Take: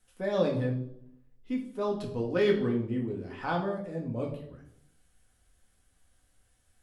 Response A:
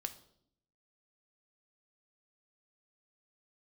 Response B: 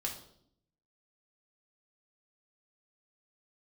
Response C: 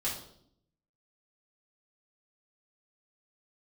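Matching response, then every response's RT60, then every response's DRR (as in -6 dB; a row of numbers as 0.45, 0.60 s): B; 0.65, 0.65, 0.65 s; 7.5, -1.0, -7.5 dB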